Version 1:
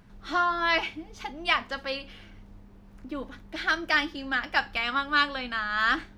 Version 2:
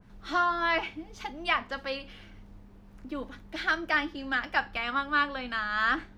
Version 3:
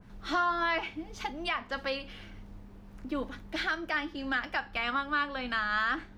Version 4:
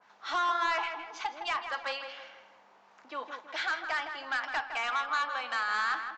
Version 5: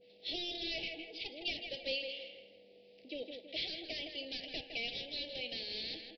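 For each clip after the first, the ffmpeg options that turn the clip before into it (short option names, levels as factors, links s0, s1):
-filter_complex "[0:a]acrossover=split=410|2800[s0][s1][s2];[s2]alimiter=level_in=1.88:limit=0.0631:level=0:latency=1:release=358,volume=0.531[s3];[s0][s1][s3]amix=inputs=3:normalize=0,adynamicequalizer=threshold=0.0178:dfrequency=1700:dqfactor=0.7:tfrequency=1700:tqfactor=0.7:attack=5:release=100:ratio=0.375:range=1.5:mode=cutabove:tftype=highshelf,volume=0.891"
-af "alimiter=limit=0.075:level=0:latency=1:release=321,volume=1.33"
-filter_complex "[0:a]highpass=f=860:t=q:w=1.7,aresample=16000,asoftclip=type=tanh:threshold=0.0596,aresample=44100,asplit=2[s0][s1];[s1]adelay=161,lowpass=f=2500:p=1,volume=0.447,asplit=2[s2][s3];[s3]adelay=161,lowpass=f=2500:p=1,volume=0.44,asplit=2[s4][s5];[s5]adelay=161,lowpass=f=2500:p=1,volume=0.44,asplit=2[s6][s7];[s7]adelay=161,lowpass=f=2500:p=1,volume=0.44,asplit=2[s8][s9];[s9]adelay=161,lowpass=f=2500:p=1,volume=0.44[s10];[s0][s2][s4][s6][s8][s10]amix=inputs=6:normalize=0"
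-af "aeval=exprs='val(0)+0.000631*sin(2*PI*490*n/s)':c=same,aresample=11025,asoftclip=type=tanh:threshold=0.0266,aresample=44100,asuperstop=centerf=1200:order=8:qfactor=0.6,volume=1.68"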